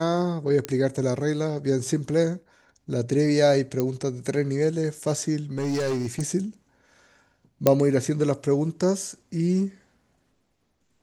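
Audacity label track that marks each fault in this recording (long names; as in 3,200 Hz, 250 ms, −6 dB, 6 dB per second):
0.650000	0.650000	click −12 dBFS
3.800000	3.800000	click −12 dBFS
5.570000	6.220000	clipping −22 dBFS
7.670000	7.670000	click −4 dBFS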